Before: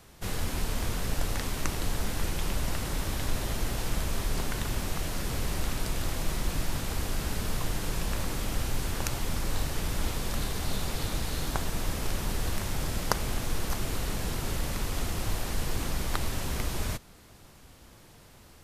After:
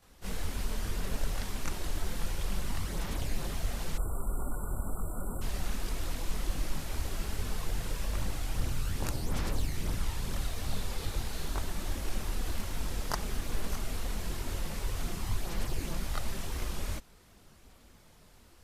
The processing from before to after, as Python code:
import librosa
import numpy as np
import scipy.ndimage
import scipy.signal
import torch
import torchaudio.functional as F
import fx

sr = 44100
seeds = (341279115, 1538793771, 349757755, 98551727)

y = fx.chorus_voices(x, sr, voices=4, hz=1.2, base_ms=23, depth_ms=3.0, mix_pct=65)
y = fx.spec_erase(y, sr, start_s=3.98, length_s=1.44, low_hz=1500.0, high_hz=7300.0)
y = y * 10.0 ** (-3.0 / 20.0)